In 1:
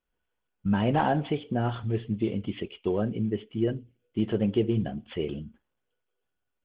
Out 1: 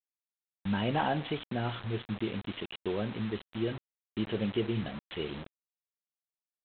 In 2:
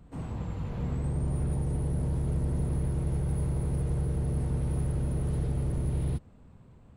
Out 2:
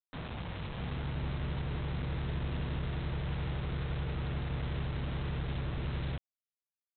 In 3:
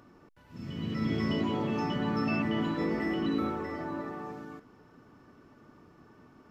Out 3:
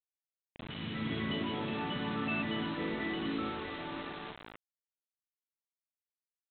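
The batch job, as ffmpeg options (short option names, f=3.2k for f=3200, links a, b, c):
-af "highshelf=f=2k:g=10.5,aresample=8000,acrusher=bits=5:mix=0:aa=0.000001,aresample=44100,volume=-6.5dB"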